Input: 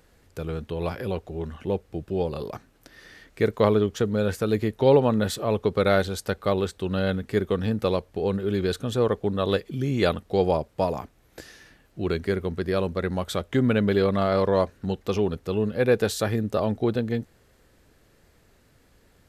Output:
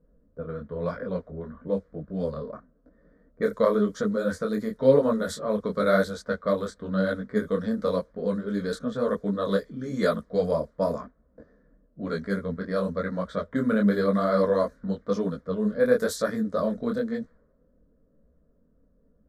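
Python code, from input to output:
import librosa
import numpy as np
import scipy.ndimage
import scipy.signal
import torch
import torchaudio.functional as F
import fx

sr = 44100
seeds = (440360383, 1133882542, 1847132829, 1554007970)

y = fx.env_lowpass(x, sr, base_hz=440.0, full_db=-19.5)
y = fx.fixed_phaser(y, sr, hz=540.0, stages=8)
y = fx.detune_double(y, sr, cents=34)
y = y * 10.0 ** (4.5 / 20.0)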